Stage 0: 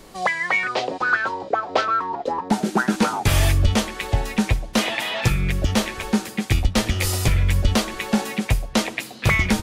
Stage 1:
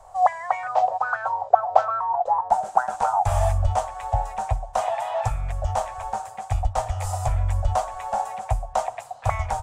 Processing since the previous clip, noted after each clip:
drawn EQ curve 110 Hz 0 dB, 190 Hz −25 dB, 330 Hz −29 dB, 720 Hz +14 dB, 2,100 Hz −13 dB, 4,400 Hz −16 dB, 7,800 Hz −2 dB, 12,000 Hz −15 dB
level −4 dB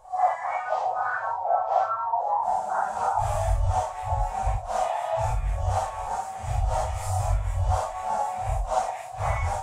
random phases in long frames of 200 ms
in parallel at +0.5 dB: speech leveller within 5 dB 0.5 s
on the sum: level −8.5 dB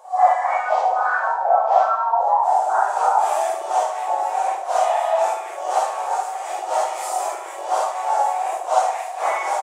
sub-octave generator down 2 octaves, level −5 dB
linear-phase brick-wall high-pass 330 Hz
repeating echo 73 ms, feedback 57%, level −10 dB
level +7 dB

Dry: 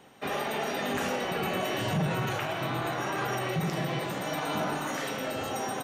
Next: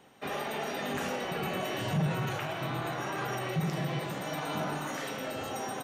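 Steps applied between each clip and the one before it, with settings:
dynamic equaliser 150 Hz, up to +5 dB, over −45 dBFS, Q 4.1
level −3.5 dB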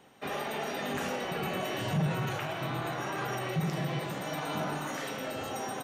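no processing that can be heard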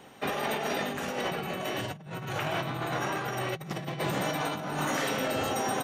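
compressor whose output falls as the input rises −36 dBFS, ratio −0.5
level +4.5 dB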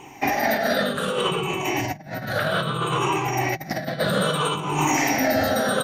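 rippled gain that drifts along the octave scale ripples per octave 0.7, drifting −0.62 Hz, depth 16 dB
level +5.5 dB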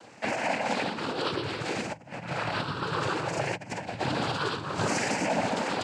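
cochlear-implant simulation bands 8
level −6.5 dB

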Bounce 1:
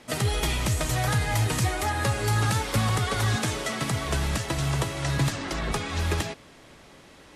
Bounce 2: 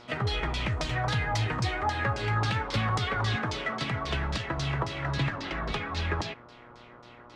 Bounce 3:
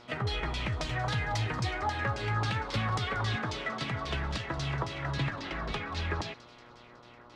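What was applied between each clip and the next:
auto-filter low-pass saw down 3.7 Hz 930–5,400 Hz; hum with harmonics 120 Hz, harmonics 12, −49 dBFS −1 dB per octave; level −4.5 dB
delay with a high-pass on its return 184 ms, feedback 66%, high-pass 3,100 Hz, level −16.5 dB; level −3 dB

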